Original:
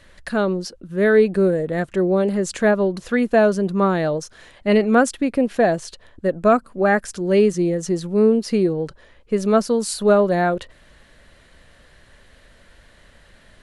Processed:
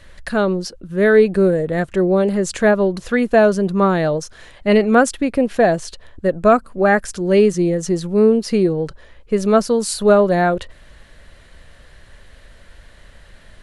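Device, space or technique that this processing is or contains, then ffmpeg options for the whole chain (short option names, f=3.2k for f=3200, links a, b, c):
low shelf boost with a cut just above: -af "lowshelf=f=89:g=6.5,equalizer=f=250:t=o:w=0.85:g=-2.5,volume=3dB"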